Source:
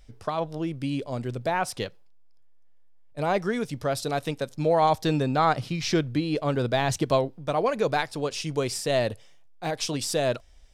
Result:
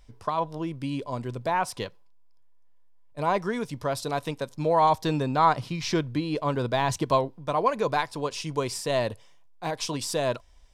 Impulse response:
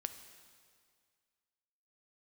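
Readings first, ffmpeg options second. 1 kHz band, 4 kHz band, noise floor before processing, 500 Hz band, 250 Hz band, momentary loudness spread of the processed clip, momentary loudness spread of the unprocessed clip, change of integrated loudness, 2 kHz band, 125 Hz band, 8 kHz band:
+2.0 dB, -2.0 dB, -50 dBFS, -1.5 dB, -2.0 dB, 10 LU, 9 LU, -0.5 dB, -1.5 dB, -2.0 dB, -2.0 dB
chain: -af "equalizer=f=1k:t=o:w=0.21:g=12.5,volume=-2dB"

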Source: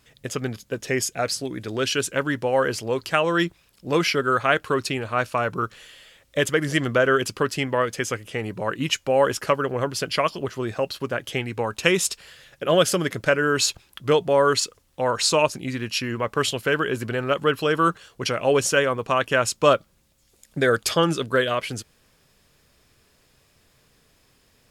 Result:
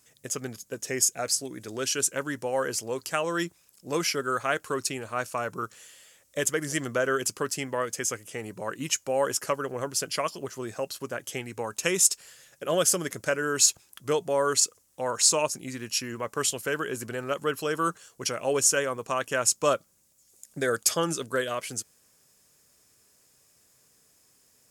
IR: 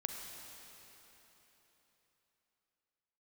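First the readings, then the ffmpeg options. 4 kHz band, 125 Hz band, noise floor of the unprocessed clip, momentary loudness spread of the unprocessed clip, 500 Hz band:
-5.0 dB, -10.0 dB, -62 dBFS, 10 LU, -7.0 dB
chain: -af "highpass=f=150:p=1,highshelf=f=5k:t=q:w=1.5:g=9.5,volume=-6.5dB"

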